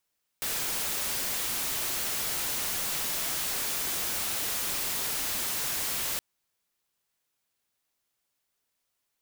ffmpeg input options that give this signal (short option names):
-f lavfi -i "anoisesrc=c=white:a=0.0488:d=5.77:r=44100:seed=1"